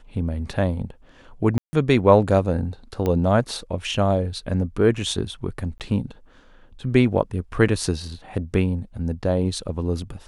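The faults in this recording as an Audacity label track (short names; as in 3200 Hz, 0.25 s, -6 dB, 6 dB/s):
1.580000	1.730000	gap 0.15 s
3.060000	3.060000	pop -12 dBFS
5.780000	5.800000	gap 18 ms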